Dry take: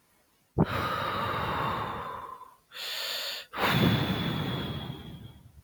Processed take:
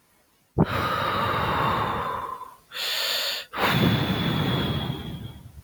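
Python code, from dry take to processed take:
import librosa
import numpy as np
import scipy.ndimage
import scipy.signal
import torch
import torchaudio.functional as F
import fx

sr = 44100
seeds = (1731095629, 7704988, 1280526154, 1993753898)

y = fx.rider(x, sr, range_db=3, speed_s=0.5)
y = y * librosa.db_to_amplitude(6.0)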